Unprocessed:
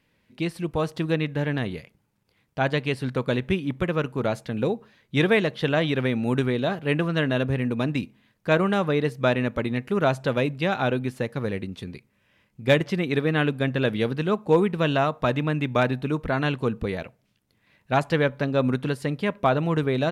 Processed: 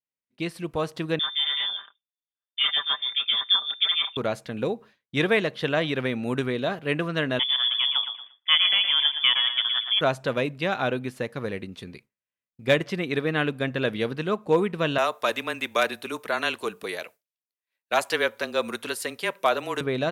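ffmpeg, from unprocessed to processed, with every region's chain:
-filter_complex "[0:a]asettb=1/sr,asplit=3[a][b][c];[a]atrim=end=1.194[d];[b]atrim=start=1.19:end=4.17,asetpts=PTS-STARTPTS,afade=t=in:d=0.004:c=qsin,afade=t=out:st=2.976:d=0.004:c=qsin,aecho=1:1:5.2:0.6,atrim=end_sample=131418,lowpass=f=3.1k:t=q:w=0.5098,lowpass=f=3.1k:t=q:w=0.6013,lowpass=f=3.1k:t=q:w=0.9,lowpass=f=3.1k:t=q:w=2.563,afreqshift=-3700,acrossover=split=1900[e][f];[e]adelay=30[g];[g][f]amix=inputs=2:normalize=0,atrim=end_sample=131418[h];[c]atrim=start=4.166[i];[d][h]acrossfade=d=0.004:c1=hsin:c2=qsin[j];[j][i]acrossfade=d=0.004:c1=qsin:c2=hsin,asettb=1/sr,asplit=3[k][l][m];[k]atrim=end=7.394[n];[l]atrim=start=7.39:end=10.01,asetpts=PTS-STARTPTS,afade=t=in:d=0.004:c=qsin,afade=t=out:st=2.616:d=0.004:c=qsin,aecho=1:1:116|232|348|464:0.376|0.132|0.046|0.0161,atrim=end_sample=115542,lowpass=f=3.1k:t=q:w=0.5098,lowpass=f=3.1k:t=q:w=0.6013,lowpass=f=3.1k:t=q:w=0.9,lowpass=f=3.1k:t=q:w=2.563,afreqshift=-3600[o];[m]atrim=start=10.006[p];[n][o]acrossfade=d=0.004:c1=hsin:c2=qsin[q];[q][p]acrossfade=d=0.004:c1=qsin:c2=hsin,asettb=1/sr,asplit=3[r][s][t];[r]atrim=end=14.984[u];[s]atrim=start=14.98:end=19.81,asetpts=PTS-STARTPTS,afade=t=in:d=0.004:c=qsin,afade=t=out:st=4.826:d=0.004:c=qsin,highpass=400,aemphasis=mode=production:type=75kf,afreqshift=-24[v];[t]atrim=start=19.806[w];[u][v]acrossfade=d=0.004:c1=hsin:c2=qsin[x];[x][w]acrossfade=d=0.004:c1=qsin:c2=hsin,bandreject=f=850:w=15,agate=range=-33dB:threshold=-42dB:ratio=3:detection=peak,lowshelf=f=240:g=-8"

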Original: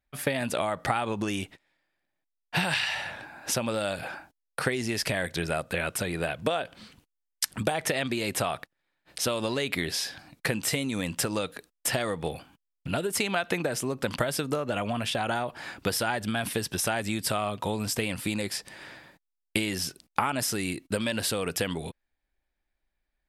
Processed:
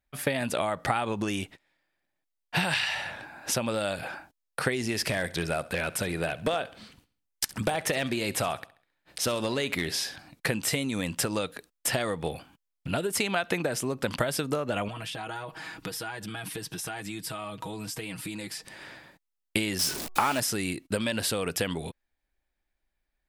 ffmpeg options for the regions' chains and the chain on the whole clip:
-filter_complex "[0:a]asettb=1/sr,asplit=3[a][b][c];[a]atrim=end=4.744[d];[b]atrim=start=4.74:end=10.16,asetpts=PTS-STARTPTS,afade=t=in:d=0.004:c=qsin,afade=t=out:st=5.416:d=0.004:c=qsin,aeval=exprs='clip(val(0),-1,0.106)':c=same,aecho=1:1:67|134|201|268:0.112|0.0505|0.0227|0.0102,atrim=end_sample=239022[e];[c]atrim=start=10.156[f];[d][e]acrossfade=d=0.004:c1=hsin:c2=qsin[g];[g][f]acrossfade=d=0.004:c1=qsin:c2=hsin,asettb=1/sr,asplit=3[h][i][j];[h]atrim=end=14.884[k];[i]atrim=start=14.88:end=18.67,asetpts=PTS-STARTPTS,afade=t=in:d=0.004:c=qsin,afade=t=out:st=3.786:d=0.004:c=qsin,equalizer=f=570:t=o:w=0.25:g=-8.5,aecho=1:1:6.3:0.86,atrim=end_sample=167139,acompressor=threshold=-37dB:ratio=2.5:attack=3.2:release=140:knee=1:detection=peak[l];[j]atrim=start=18.666[m];[k][l]acrossfade=d=0.004:c1=hsin:c2=qsin[n];[n][m]acrossfade=d=0.004:c1=qsin:c2=hsin,asettb=1/sr,asplit=3[o][p][q];[o]atrim=end=19.794[r];[p]atrim=start=19.79:end=20.4,asetpts=PTS-STARTPTS,afade=t=in:d=0.004:c=qsin,afade=t=out:st=0.606:d=0.004:c=qsin,aeval=exprs='val(0)+0.5*0.0355*sgn(val(0))':c=same,bass=f=250:g=-7,treble=f=4k:g=2,bandreject=f=371.7:t=h:w=4,bandreject=f=743.4:t=h:w=4,bandreject=f=1.1151k:t=h:w=4[s];[q]atrim=start=20.396[t];[r][s]acrossfade=d=0.004:c1=hsin:c2=qsin[u];[u][t]acrossfade=d=0.004:c1=qsin:c2=hsin"

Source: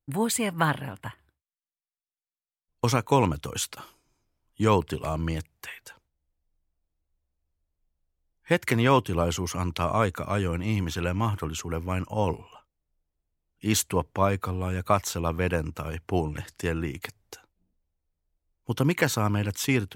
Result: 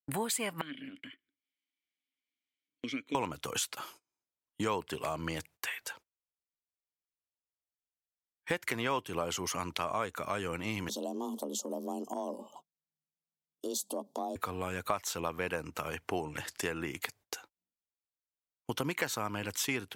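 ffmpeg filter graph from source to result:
-filter_complex "[0:a]asettb=1/sr,asplit=3[a][b][c];[a]atrim=end=0.614[d];[b]atrim=start=0.61:end=3.15,asetpts=PTS-STARTPTS,afade=t=in:d=0.004:c=qsin,afade=t=out:st=2.536:d=0.004:c=qsin,acompressor=mode=upward:threshold=-26dB:ratio=2.5:attack=3.2:release=140:knee=2.83:detection=peak,asplit=3[e][f][g];[e]bandpass=f=270:t=q:w=8,volume=0dB[h];[f]bandpass=f=2.29k:t=q:w=8,volume=-6dB[i];[g]bandpass=f=3.01k:t=q:w=8,volume=-9dB[j];[h][i][j]amix=inputs=3:normalize=0[k];[c]atrim=start=3.146[l];[d][k]acrossfade=d=0.004:c1=hsin:c2=qsin[m];[m][l]acrossfade=d=0.004:c1=qsin:c2=hsin,asettb=1/sr,asplit=3[n][o][p];[n]atrim=end=10.894[q];[o]atrim=start=10.89:end=14.36,asetpts=PTS-STARTPTS,afade=t=in:d=0.004:c=qsin,afade=t=out:st=3.466:d=0.004:c=qsin,asuperstop=centerf=1700:order=8:qfactor=0.62,afreqshift=130,acompressor=threshold=-35dB:ratio=2.5:attack=3.2:release=140:knee=1:detection=peak[r];[p]atrim=start=14.356[s];[q][r]acrossfade=d=0.004:c1=hsin:c2=qsin[t];[t][s]acrossfade=d=0.004:c1=qsin:c2=hsin,highpass=f=510:p=1,agate=range=-23dB:threshold=-57dB:ratio=16:detection=peak,acompressor=threshold=-40dB:ratio=3,volume=6dB"

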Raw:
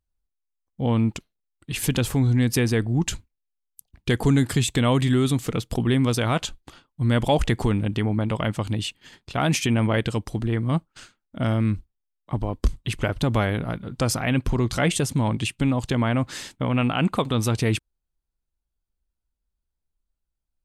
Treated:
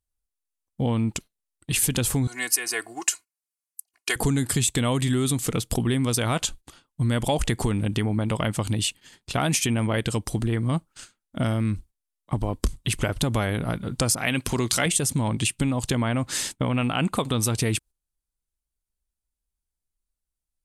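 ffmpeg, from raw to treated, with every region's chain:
-filter_complex "[0:a]asettb=1/sr,asplit=3[a][b][c];[a]atrim=end=2.274[d];[b]atrim=start=2.27:end=4.16,asetpts=PTS-STARTPTS,afade=t=in:d=0.004:c=qsin,afade=t=out:st=1.886:d=0.004:c=qsin,highpass=910,equalizer=f=3.5k:w=5.7:g=-12.5,aecho=1:1:2.8:0.99,atrim=end_sample=83349[e];[c]atrim=start=4.156[f];[d][e]acrossfade=d=0.004:c1=hsin:c2=qsin[g];[g][f]acrossfade=d=0.004:c1=qsin:c2=hsin,asettb=1/sr,asplit=3[h][i][j];[h]atrim=end=14.154[k];[i]atrim=start=14.15:end=14.86,asetpts=PTS-STARTPTS,afade=t=in:d=0.004:c=qsin,afade=t=out:st=0.706:d=0.004:c=qsin,highpass=f=170:p=1,adynamicequalizer=threshold=0.0112:dfrequency=1600:dqfactor=0.7:tfrequency=1600:tqfactor=0.7:attack=5:release=100:ratio=0.375:range=3:mode=boostabove:tftype=highshelf[l];[j]atrim=start=14.856[m];[k][l]acrossfade=d=0.004:c1=hsin:c2=qsin[n];[n][m]acrossfade=d=0.004:c1=qsin:c2=hsin,agate=range=-9dB:threshold=-42dB:ratio=16:detection=peak,equalizer=f=9.7k:w=0.71:g=11.5,acompressor=threshold=-26dB:ratio=3,volume=4dB"

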